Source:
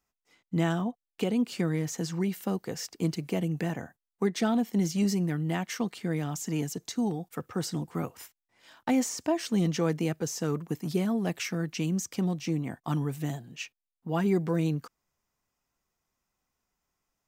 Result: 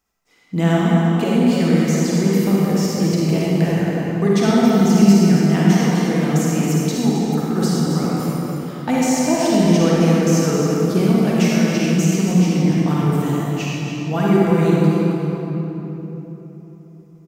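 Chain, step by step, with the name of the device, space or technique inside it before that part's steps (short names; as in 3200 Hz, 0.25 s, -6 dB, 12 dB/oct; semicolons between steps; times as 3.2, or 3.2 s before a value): cave (echo 0.272 s -9 dB; reverb RT60 3.7 s, pre-delay 40 ms, DRR -6 dB); gain +5.5 dB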